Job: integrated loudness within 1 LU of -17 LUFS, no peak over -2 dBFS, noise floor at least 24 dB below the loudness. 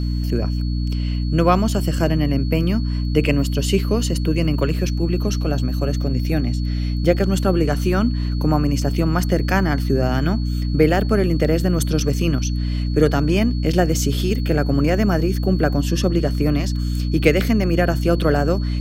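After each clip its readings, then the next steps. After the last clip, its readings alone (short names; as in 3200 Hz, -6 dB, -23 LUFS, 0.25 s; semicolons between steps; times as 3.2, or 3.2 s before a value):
hum 60 Hz; harmonics up to 300 Hz; hum level -19 dBFS; steady tone 4400 Hz; tone level -39 dBFS; loudness -19.5 LUFS; peak -1.0 dBFS; loudness target -17.0 LUFS
-> de-hum 60 Hz, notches 5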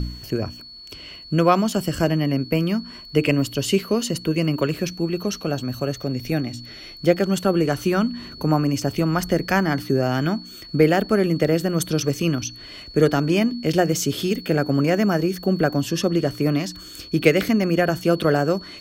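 hum none; steady tone 4400 Hz; tone level -39 dBFS
-> notch 4400 Hz, Q 30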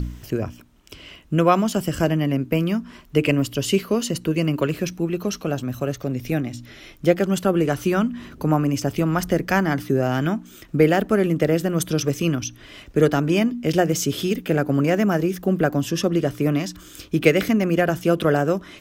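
steady tone none; loudness -21.5 LUFS; peak -2.0 dBFS; loudness target -17.0 LUFS
-> gain +4.5 dB; limiter -2 dBFS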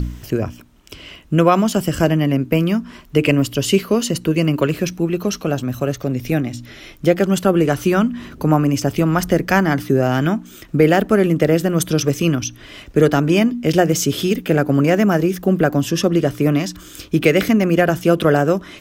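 loudness -17.5 LUFS; peak -2.0 dBFS; noise floor -42 dBFS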